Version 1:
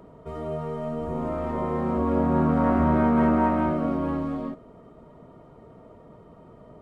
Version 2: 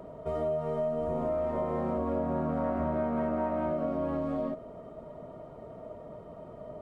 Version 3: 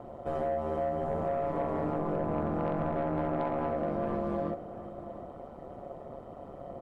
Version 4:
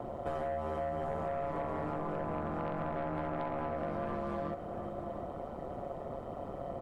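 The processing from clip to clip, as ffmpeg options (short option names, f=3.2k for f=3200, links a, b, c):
-af "equalizer=f=620:w=3.7:g=10.5,acompressor=threshold=-28dB:ratio=6"
-filter_complex "[0:a]aeval=exprs='val(0)*sin(2*PI*71*n/s)':c=same,aeval=exprs='0.106*(cos(1*acos(clip(val(0)/0.106,-1,1)))-cos(1*PI/2))+0.0106*(cos(5*acos(clip(val(0)/0.106,-1,1)))-cos(5*PI/2))':c=same,asplit=2[a][b];[b]adelay=699.7,volume=-14dB,highshelf=f=4k:g=-15.7[c];[a][c]amix=inputs=2:normalize=0"
-filter_complex "[0:a]acrossover=split=140|850[a][b][c];[a]acompressor=threshold=-50dB:ratio=4[d];[b]acompressor=threshold=-45dB:ratio=4[e];[c]acompressor=threshold=-45dB:ratio=4[f];[d][e][f]amix=inputs=3:normalize=0,volume=5dB"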